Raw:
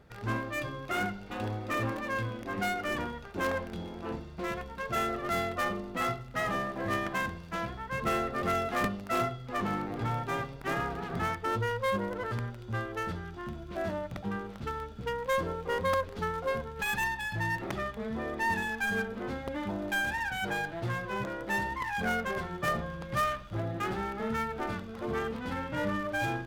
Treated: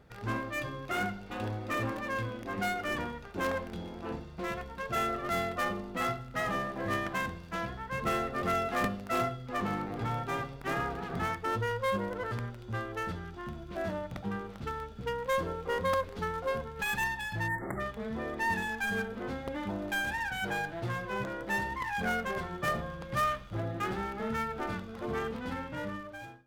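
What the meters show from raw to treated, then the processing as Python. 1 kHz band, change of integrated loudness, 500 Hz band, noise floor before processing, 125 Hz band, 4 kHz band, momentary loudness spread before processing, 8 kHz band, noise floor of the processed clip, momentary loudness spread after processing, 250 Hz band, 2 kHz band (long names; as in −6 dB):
−1.0 dB, −1.0 dB, −1.0 dB, −45 dBFS, −1.5 dB, −1.0 dB, 6 LU, −1.0 dB, −46 dBFS, 7 LU, −1.5 dB, −1.5 dB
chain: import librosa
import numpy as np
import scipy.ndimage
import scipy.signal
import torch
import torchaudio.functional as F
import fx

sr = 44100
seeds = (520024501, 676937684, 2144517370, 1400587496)

y = fx.fade_out_tail(x, sr, length_s=1.09)
y = fx.rev_fdn(y, sr, rt60_s=0.68, lf_ratio=1.0, hf_ratio=0.85, size_ms=12.0, drr_db=16.0)
y = fx.spec_erase(y, sr, start_s=17.48, length_s=0.32, low_hz=2200.0, high_hz=7200.0)
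y = F.gain(torch.from_numpy(y), -1.0).numpy()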